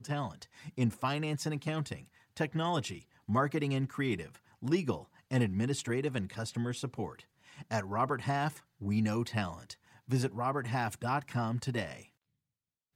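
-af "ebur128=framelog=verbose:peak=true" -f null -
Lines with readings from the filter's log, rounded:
Integrated loudness:
  I:         -34.3 LUFS
  Threshold: -44.9 LUFS
Loudness range:
  LRA:         1.9 LU
  Threshold: -54.7 LUFS
  LRA low:   -35.7 LUFS
  LRA high:  -33.8 LUFS
True peak:
  Peak:      -16.6 dBFS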